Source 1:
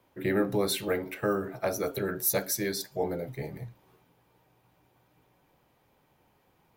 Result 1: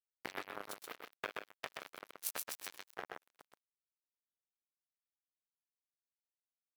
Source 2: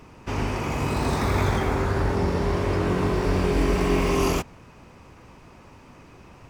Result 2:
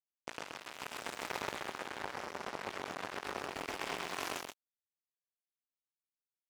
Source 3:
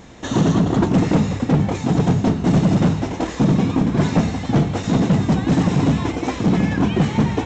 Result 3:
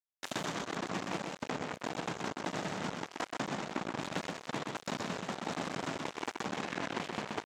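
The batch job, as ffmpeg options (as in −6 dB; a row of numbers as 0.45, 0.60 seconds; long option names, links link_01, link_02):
-filter_complex "[0:a]acompressor=threshold=-33dB:ratio=2.5,asplit=2[link_01][link_02];[link_02]aecho=0:1:323|646|969|1292:0.178|0.0747|0.0314|0.0132[link_03];[link_01][link_03]amix=inputs=2:normalize=0,acrusher=bits=3:mix=0:aa=0.5,highpass=frequency=700:poles=1,asplit=2[link_04][link_05];[link_05]aecho=0:1:127:0.668[link_06];[link_04][link_06]amix=inputs=2:normalize=0"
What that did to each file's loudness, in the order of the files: −15.5, −17.5, −20.0 LU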